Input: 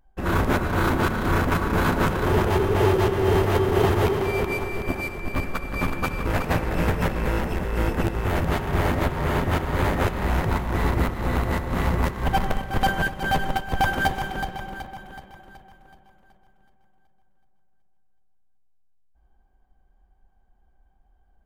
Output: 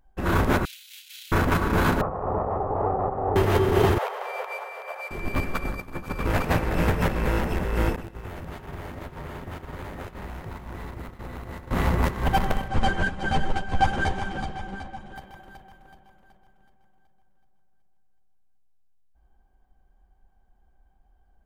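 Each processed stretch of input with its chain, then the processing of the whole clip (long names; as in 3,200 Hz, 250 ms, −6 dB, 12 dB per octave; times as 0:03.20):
0:00.65–0:01.32: Butterworth high-pass 2,800 Hz + compressor whose output falls as the input rises −46 dBFS
0:02.01–0:03.36: lower of the sound and its delayed copy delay 1.6 ms + transistor ladder low-pass 1,100 Hz, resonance 50% + parametric band 510 Hz +5.5 dB 2.9 octaves
0:03.98–0:05.11: Butterworth high-pass 490 Hz 72 dB per octave + high-shelf EQ 2,200 Hz −11 dB
0:05.65–0:06.19: parametric band 2,800 Hz −4.5 dB 0.91 octaves + compressor whose output falls as the input rises −31 dBFS, ratio −0.5
0:07.96–0:11.71: mu-law and A-law mismatch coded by A + downward expander −22 dBFS + downward compressor 16 to 1, threshold −32 dBFS
0:12.68–0:15.16: low-pass filter 8,700 Hz 24 dB per octave + low-shelf EQ 350 Hz +4 dB + string-ensemble chorus
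whole clip: no processing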